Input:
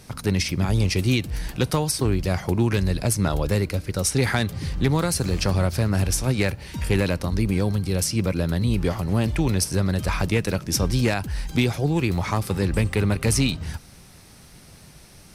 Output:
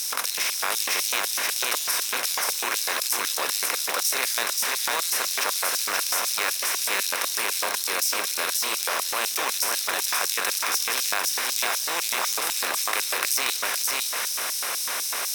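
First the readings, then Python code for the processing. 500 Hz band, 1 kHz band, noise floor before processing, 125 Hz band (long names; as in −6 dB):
−8.5 dB, +4.0 dB, −48 dBFS, below −35 dB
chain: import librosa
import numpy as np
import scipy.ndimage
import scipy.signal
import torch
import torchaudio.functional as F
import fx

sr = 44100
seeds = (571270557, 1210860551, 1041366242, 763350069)

p1 = fx.bin_compress(x, sr, power=0.4)
p2 = fx.peak_eq(p1, sr, hz=870.0, db=-5.5, octaves=0.27)
p3 = fx.notch(p2, sr, hz=4500.0, q=12.0)
p4 = p3 + fx.echo_single(p3, sr, ms=529, db=-3.0, dry=0)
p5 = fx.filter_lfo_highpass(p4, sr, shape='square', hz=4.0, low_hz=920.0, high_hz=5000.0, q=1.4)
p6 = fx.quant_dither(p5, sr, seeds[0], bits=8, dither='triangular')
p7 = np.repeat(p6[::2], 2)[:len(p6)]
p8 = fx.low_shelf(p7, sr, hz=170.0, db=-10.5)
p9 = fx.env_flatten(p8, sr, amount_pct=50)
y = p9 * librosa.db_to_amplitude(-7.0)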